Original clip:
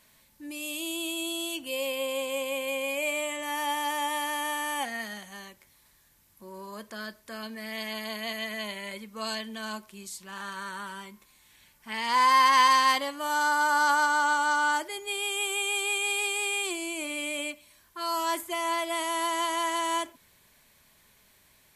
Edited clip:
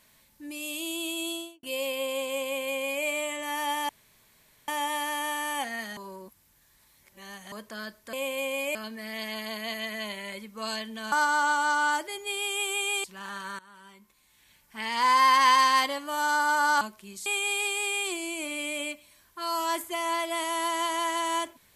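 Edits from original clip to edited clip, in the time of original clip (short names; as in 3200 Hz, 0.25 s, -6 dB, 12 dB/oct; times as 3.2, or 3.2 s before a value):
1.3–1.63 studio fade out
2.43–3.05 copy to 7.34
3.89 insert room tone 0.79 s
5.18–6.73 reverse
9.71–10.16 swap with 13.93–15.85
10.71–11.92 fade in, from -19.5 dB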